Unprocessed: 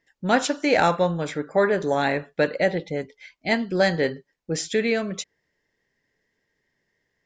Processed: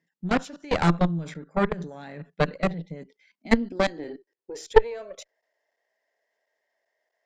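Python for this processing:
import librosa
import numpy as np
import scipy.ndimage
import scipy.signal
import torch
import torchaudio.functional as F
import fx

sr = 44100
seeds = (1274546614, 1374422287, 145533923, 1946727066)

y = fx.level_steps(x, sr, step_db=19)
y = fx.filter_sweep_highpass(y, sr, from_hz=170.0, to_hz=650.0, start_s=2.96, end_s=5.38, q=6.6)
y = fx.cheby_harmonics(y, sr, harmonics=(3, 4), levels_db=(-20, -11), full_scale_db=-2.0)
y = y * librosa.db_to_amplitude(-1.0)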